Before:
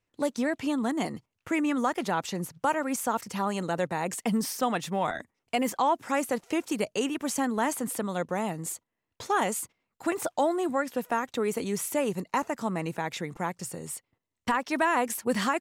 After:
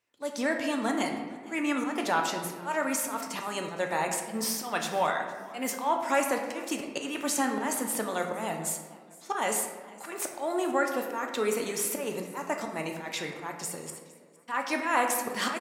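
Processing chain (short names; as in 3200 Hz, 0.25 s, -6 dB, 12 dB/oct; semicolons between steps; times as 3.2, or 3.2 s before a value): HPF 540 Hz 6 dB/oct; auto swell 0.158 s; frequency-shifting echo 0.46 s, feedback 34%, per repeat +78 Hz, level -22 dB; reverb RT60 1.5 s, pre-delay 3 ms, DRR 2.5 dB; gain +2.5 dB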